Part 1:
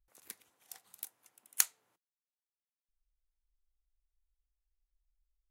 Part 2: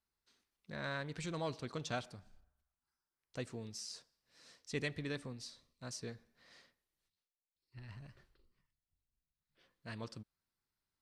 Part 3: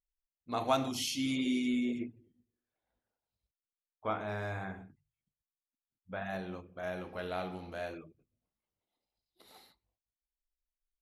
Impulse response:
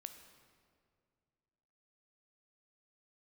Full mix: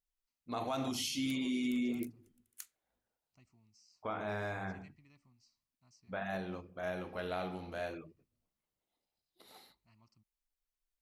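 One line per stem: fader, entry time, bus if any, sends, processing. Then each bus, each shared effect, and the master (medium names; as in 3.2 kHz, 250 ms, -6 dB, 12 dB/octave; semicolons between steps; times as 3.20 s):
1.96 s -8.5 dB -> 2.49 s -16.5 dB, 1.00 s, bus A, no send, high-pass 1.2 kHz 24 dB/octave; waveshaping leveller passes 1
-19.5 dB, 0.00 s, no bus, no send, static phaser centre 2.4 kHz, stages 8
0.0 dB, 0.00 s, bus A, no send, none
bus A: 0.0 dB, hum notches 50/100 Hz; peak limiter -27.5 dBFS, peak gain reduction 10 dB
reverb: none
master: none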